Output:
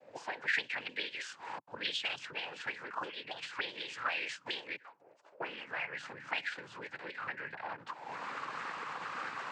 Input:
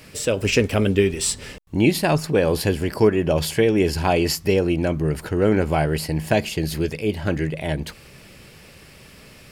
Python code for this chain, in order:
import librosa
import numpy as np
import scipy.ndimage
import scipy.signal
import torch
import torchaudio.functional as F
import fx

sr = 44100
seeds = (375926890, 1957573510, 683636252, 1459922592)

y = fx.recorder_agc(x, sr, target_db=-15.0, rise_db_per_s=60.0, max_gain_db=30)
y = fx.differentiator(y, sr, at=(4.76, 5.4))
y = fx.noise_vocoder(y, sr, seeds[0], bands=8)
y = fx.auto_wah(y, sr, base_hz=550.0, top_hz=3300.0, q=5.3, full_db=-14.5, direction='up')